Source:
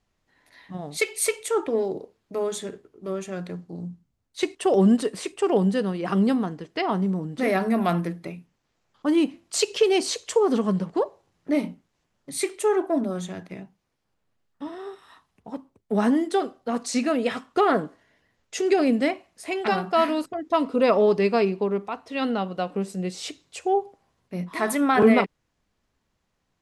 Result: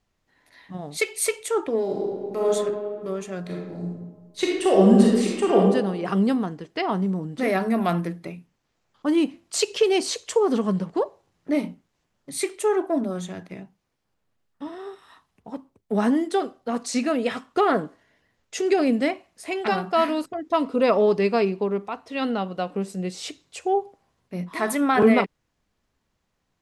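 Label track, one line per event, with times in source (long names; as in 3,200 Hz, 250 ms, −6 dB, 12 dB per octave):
1.810000	2.520000	thrown reverb, RT60 2 s, DRR −3 dB
3.410000	5.580000	thrown reverb, RT60 1.1 s, DRR −2.5 dB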